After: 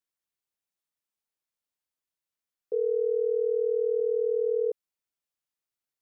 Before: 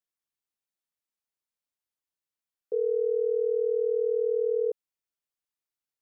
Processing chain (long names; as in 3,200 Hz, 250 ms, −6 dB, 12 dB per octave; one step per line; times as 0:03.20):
0:04.00–0:04.48: phaser with its sweep stopped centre 430 Hz, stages 4